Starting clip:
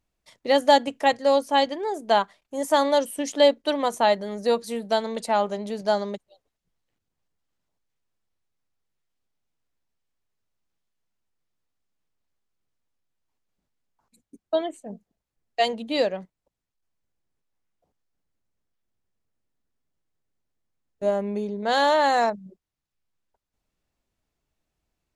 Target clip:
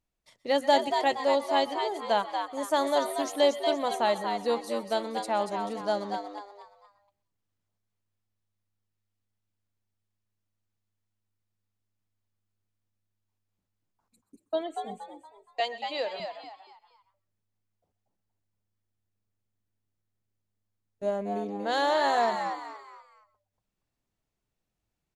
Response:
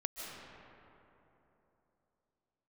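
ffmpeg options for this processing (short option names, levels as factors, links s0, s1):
-filter_complex "[0:a]asettb=1/sr,asplit=3[s0][s1][s2];[s0]atrim=end=15.604[s3];[s1]atrim=start=15.6:end=16.2,asetpts=PTS-STARTPTS,afade=t=in:d=0.004:c=qsin,afade=t=out:st=0.596:d=0.004:c=qsin,highpass=550,lowpass=5600[s4];[s2]atrim=start=16.196[s5];[s3][s4]acrossfade=d=0.004:c1=hsin:c2=qsin[s6];[s6][s5]acrossfade=d=0.004:c1=qsin:c2=hsin,asplit=5[s7][s8][s9][s10][s11];[s8]adelay=235,afreqshift=100,volume=0.501[s12];[s9]adelay=470,afreqshift=200,volume=0.176[s13];[s10]adelay=705,afreqshift=300,volume=0.0617[s14];[s11]adelay=940,afreqshift=400,volume=0.0214[s15];[s7][s12][s13][s14][s15]amix=inputs=5:normalize=0[s16];[1:a]atrim=start_sample=2205,afade=t=out:st=0.18:d=0.01,atrim=end_sample=8379[s17];[s16][s17]afir=irnorm=-1:irlink=0,volume=0.668"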